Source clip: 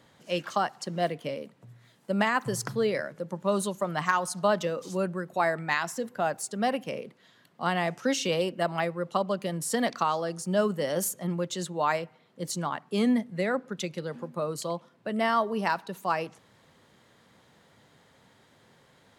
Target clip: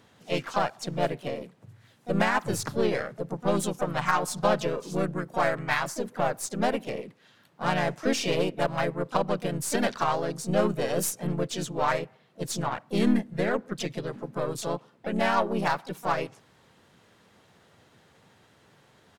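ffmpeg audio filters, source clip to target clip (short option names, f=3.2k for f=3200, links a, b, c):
-filter_complex "[0:a]aeval=exprs='0.266*(cos(1*acos(clip(val(0)/0.266,-1,1)))-cos(1*PI/2))+0.0133*(cos(8*acos(clip(val(0)/0.266,-1,1)))-cos(8*PI/2))':c=same,asplit=3[a][b][c];[b]asetrate=37084,aresample=44100,atempo=1.18921,volume=-2dB[d];[c]asetrate=55563,aresample=44100,atempo=0.793701,volume=-10dB[e];[a][d][e]amix=inputs=3:normalize=0,volume=-1.5dB"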